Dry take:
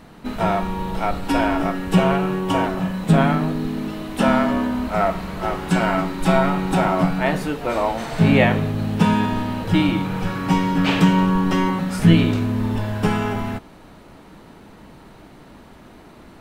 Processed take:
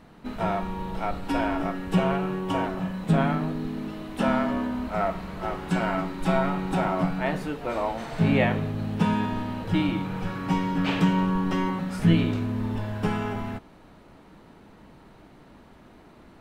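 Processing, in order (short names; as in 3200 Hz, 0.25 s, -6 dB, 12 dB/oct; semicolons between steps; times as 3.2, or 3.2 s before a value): high shelf 5000 Hz -5.5 dB; gain -6.5 dB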